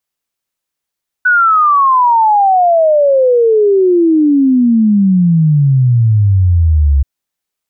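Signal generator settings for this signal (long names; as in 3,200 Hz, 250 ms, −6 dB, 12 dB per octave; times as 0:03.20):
exponential sine sweep 1,500 Hz → 67 Hz 5.78 s −6 dBFS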